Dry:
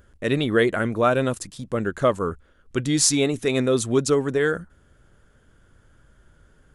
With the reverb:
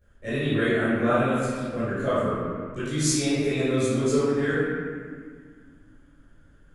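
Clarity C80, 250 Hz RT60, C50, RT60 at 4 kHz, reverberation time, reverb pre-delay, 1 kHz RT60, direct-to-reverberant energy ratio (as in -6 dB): -2.0 dB, 3.0 s, -4.5 dB, 1.3 s, 1.9 s, 16 ms, 1.8 s, -17.5 dB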